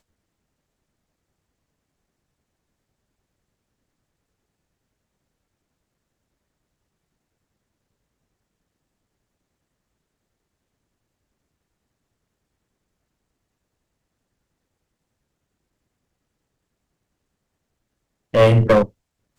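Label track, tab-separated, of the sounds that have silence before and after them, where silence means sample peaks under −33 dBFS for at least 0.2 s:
18.340000	18.860000	sound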